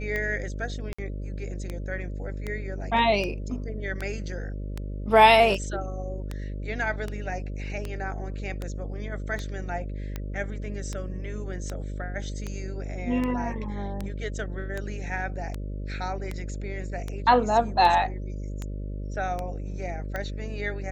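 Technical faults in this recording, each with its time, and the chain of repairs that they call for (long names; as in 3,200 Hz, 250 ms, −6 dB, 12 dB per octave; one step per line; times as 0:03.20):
mains buzz 50 Hz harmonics 12 −33 dBFS
scratch tick 78 rpm −18 dBFS
0:00.93–0:00.98: drop-out 55 ms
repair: click removal
hum removal 50 Hz, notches 12
repair the gap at 0:00.93, 55 ms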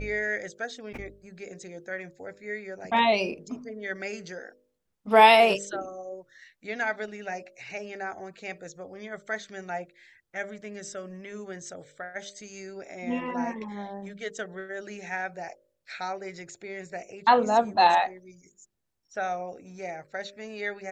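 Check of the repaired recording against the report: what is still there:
none of them is left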